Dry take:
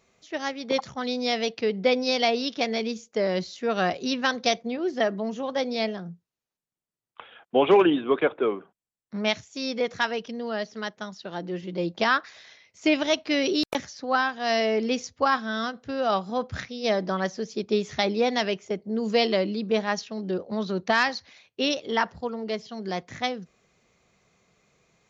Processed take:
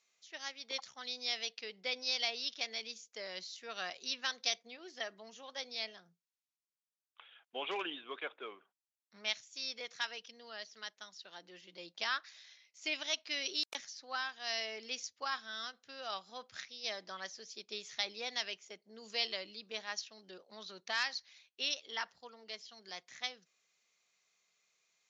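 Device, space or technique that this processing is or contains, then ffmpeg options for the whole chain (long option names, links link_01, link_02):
piezo pickup straight into a mixer: -af "lowpass=5700,aderivative"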